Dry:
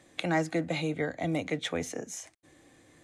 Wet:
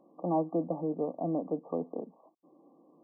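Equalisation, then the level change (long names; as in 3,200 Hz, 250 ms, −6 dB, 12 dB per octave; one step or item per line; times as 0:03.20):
linear-phase brick-wall band-pass 160–1,200 Hz
0.0 dB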